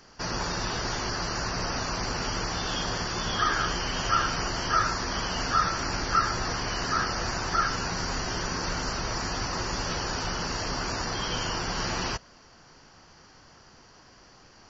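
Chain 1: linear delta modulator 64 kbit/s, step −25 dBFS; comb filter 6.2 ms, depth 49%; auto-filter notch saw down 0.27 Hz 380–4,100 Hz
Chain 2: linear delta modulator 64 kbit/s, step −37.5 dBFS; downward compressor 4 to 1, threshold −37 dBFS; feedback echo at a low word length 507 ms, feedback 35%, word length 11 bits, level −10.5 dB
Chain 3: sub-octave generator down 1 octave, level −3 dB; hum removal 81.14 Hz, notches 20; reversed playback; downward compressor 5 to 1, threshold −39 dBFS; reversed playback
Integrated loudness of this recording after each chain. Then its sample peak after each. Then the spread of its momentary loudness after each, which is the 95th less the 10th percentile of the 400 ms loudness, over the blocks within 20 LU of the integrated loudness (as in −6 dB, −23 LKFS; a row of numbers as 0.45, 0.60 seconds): −28.0, −38.0, −40.5 LKFS; −12.0, −24.0, −27.5 dBFS; 4, 5, 13 LU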